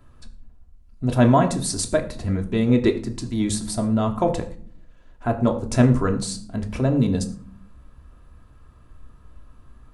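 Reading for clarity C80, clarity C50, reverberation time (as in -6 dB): 15.5 dB, 12.5 dB, 0.50 s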